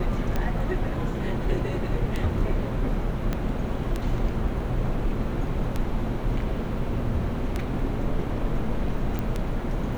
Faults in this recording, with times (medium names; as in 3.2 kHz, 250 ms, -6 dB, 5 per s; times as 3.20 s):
tick 33 1/3 rpm -14 dBFS
3.33 s: pop -14 dBFS
9.19 s: pop -16 dBFS